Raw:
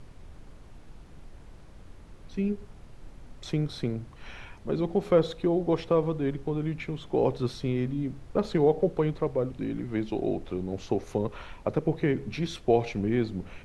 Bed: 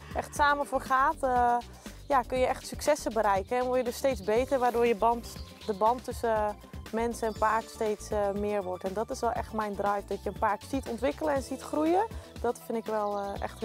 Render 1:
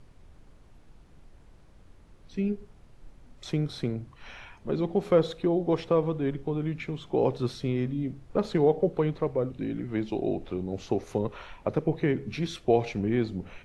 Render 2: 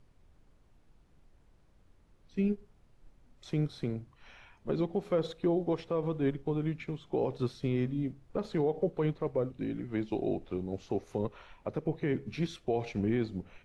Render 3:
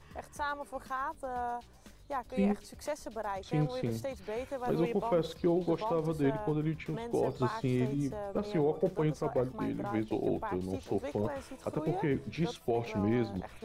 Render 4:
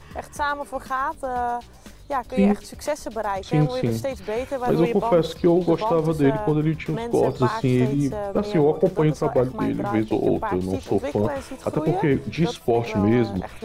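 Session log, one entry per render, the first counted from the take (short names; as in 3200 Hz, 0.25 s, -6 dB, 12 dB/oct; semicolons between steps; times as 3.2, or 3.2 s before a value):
noise print and reduce 6 dB
limiter -19.5 dBFS, peak gain reduction 8.5 dB; upward expander 1.5:1, over -43 dBFS
add bed -11 dB
gain +11 dB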